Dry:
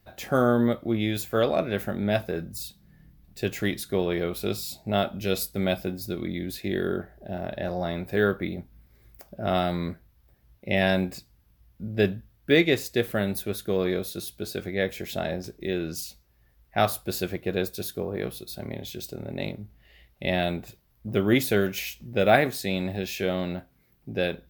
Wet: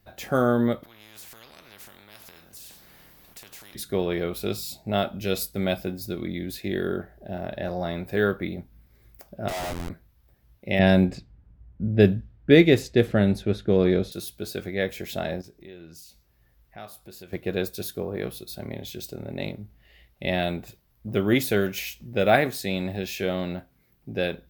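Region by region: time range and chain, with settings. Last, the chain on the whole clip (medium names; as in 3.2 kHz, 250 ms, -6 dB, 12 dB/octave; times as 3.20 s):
0.83–3.75 s: compression 3:1, threshold -44 dBFS + spectrum-flattening compressor 4:1
9.48–9.90 s: high-pass 610 Hz + band-stop 1.3 kHz, Q 9.8 + Schmitt trigger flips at -35 dBFS
10.79–14.12 s: bass shelf 450 Hz +9 dB + band-stop 1.1 kHz, Q 18 + level-controlled noise filter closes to 1.5 kHz, open at -13 dBFS
15.41–17.33 s: doubling 24 ms -12.5 dB + compression 2:1, threshold -53 dBFS
whole clip: none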